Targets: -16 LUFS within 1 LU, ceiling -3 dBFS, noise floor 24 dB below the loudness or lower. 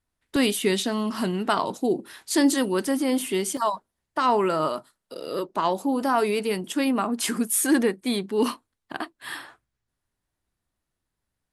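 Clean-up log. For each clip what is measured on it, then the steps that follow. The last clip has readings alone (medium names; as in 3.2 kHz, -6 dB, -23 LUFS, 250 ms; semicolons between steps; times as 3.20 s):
dropouts 2; longest dropout 2.0 ms; loudness -24.5 LUFS; peak level -9.0 dBFS; loudness target -16.0 LUFS
-> interpolate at 0.36/3.57 s, 2 ms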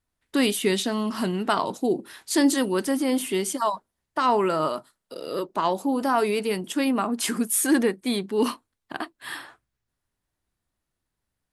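dropouts 0; loudness -24.5 LUFS; peak level -9.0 dBFS; loudness target -16.0 LUFS
-> trim +8.5 dB; peak limiter -3 dBFS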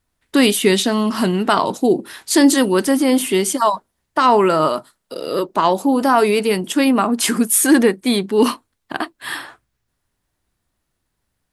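loudness -16.5 LUFS; peak level -3.0 dBFS; noise floor -74 dBFS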